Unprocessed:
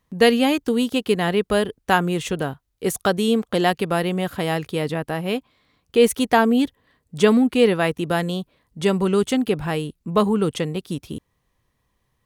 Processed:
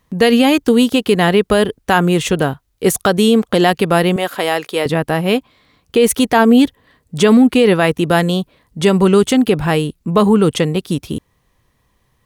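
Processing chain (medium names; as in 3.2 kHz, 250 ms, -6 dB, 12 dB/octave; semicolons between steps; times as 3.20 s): 4.16–4.86 s: high-pass 410 Hz 12 dB/octave; loudness maximiser +10 dB; trim -1 dB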